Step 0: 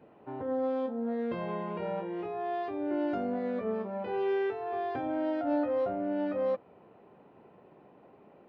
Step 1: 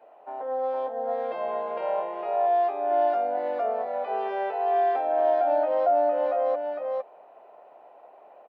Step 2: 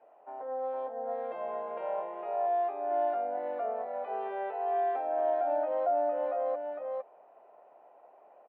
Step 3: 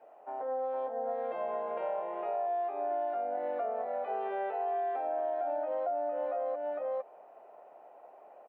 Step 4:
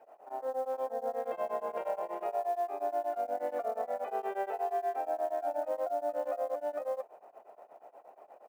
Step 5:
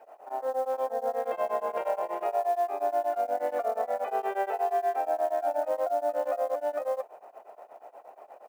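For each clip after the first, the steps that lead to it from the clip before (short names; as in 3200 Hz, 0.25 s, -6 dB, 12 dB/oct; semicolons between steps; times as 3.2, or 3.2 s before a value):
resonant high-pass 670 Hz, resonance Q 4; echo 0.458 s -3 dB
LPF 2500 Hz 12 dB/oct; gain -6.5 dB
notch 1000 Hz, Q 22; compressor, threshold -34 dBFS, peak gain reduction 9 dB; gain +3.5 dB
short-mantissa float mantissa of 4-bit; beating tremolo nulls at 8.4 Hz; gain +2.5 dB
low shelf 340 Hz -8 dB; gain +7 dB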